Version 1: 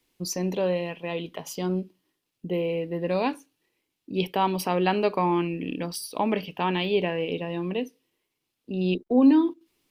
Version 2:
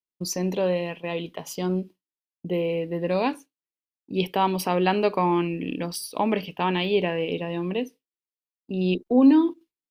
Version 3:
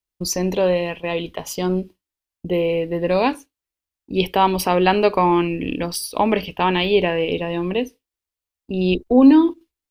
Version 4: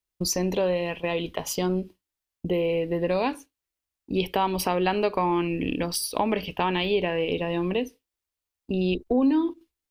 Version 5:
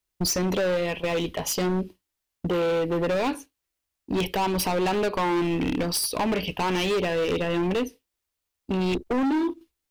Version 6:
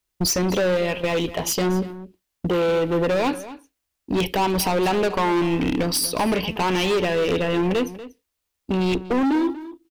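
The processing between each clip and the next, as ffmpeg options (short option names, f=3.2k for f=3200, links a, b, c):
-af "agate=range=-33dB:threshold=-37dB:ratio=3:detection=peak,volume=1.5dB"
-af "lowshelf=f=100:t=q:w=1.5:g=13,volume=6.5dB"
-af "acompressor=threshold=-24dB:ratio=2.5"
-af "asoftclip=type=hard:threshold=-26dB,volume=4.5dB"
-filter_complex "[0:a]asplit=2[a][b];[b]adelay=239.1,volume=-15dB,highshelf=f=4k:g=-5.38[c];[a][c]amix=inputs=2:normalize=0,volume=3.5dB"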